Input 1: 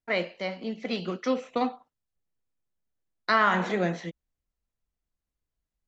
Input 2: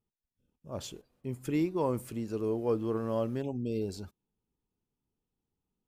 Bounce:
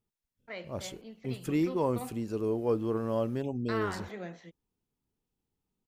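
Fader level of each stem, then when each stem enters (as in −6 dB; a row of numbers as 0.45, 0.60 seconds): −14.5, +1.0 decibels; 0.40, 0.00 seconds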